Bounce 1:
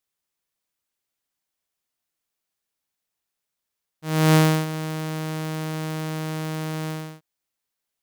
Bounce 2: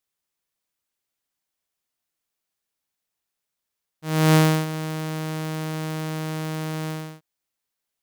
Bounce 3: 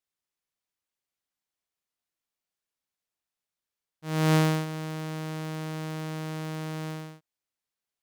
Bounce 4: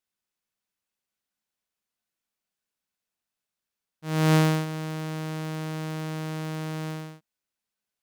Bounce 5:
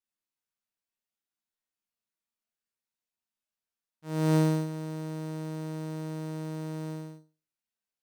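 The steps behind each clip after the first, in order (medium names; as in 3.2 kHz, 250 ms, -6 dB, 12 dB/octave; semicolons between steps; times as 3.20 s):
no audible change
treble shelf 10 kHz -6 dB; trim -5.5 dB
small resonant body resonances 210/1500/2600 Hz, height 8 dB, ringing for 90 ms; trim +1.5 dB
chord resonator D#2 sus4, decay 0.32 s; trim +4.5 dB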